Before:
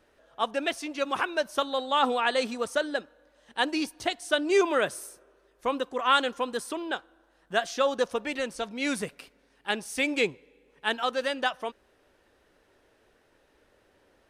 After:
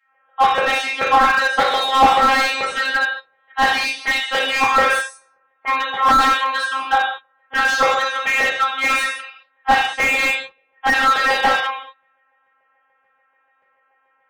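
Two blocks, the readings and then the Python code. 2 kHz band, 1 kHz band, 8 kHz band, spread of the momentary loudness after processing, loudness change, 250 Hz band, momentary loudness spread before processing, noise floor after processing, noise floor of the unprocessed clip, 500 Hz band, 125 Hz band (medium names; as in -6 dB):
+15.0 dB, +14.5 dB, +8.5 dB, 10 LU, +12.0 dB, +1.5 dB, 10 LU, -64 dBFS, -66 dBFS, +3.0 dB, no reading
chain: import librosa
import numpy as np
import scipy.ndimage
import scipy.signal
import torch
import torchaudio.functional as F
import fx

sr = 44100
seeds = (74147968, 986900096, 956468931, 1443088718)

y = fx.env_lowpass(x, sr, base_hz=1900.0, full_db=-22.0)
y = scipy.signal.sosfilt(scipy.signal.butter(4, 97.0, 'highpass', fs=sr, output='sos'), y)
y = fx.leveller(y, sr, passes=2)
y = fx.robotise(y, sr, hz=267.0)
y = fx.spec_topn(y, sr, count=64)
y = fx.filter_lfo_highpass(y, sr, shape='saw_down', hz=6.9, low_hz=710.0, high_hz=2100.0, q=2.4)
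y = fx.rev_gated(y, sr, seeds[0], gate_ms=240, shape='falling', drr_db=-6.0)
y = fx.slew_limit(y, sr, full_power_hz=260.0)
y = y * 10.0 ** (3.0 / 20.0)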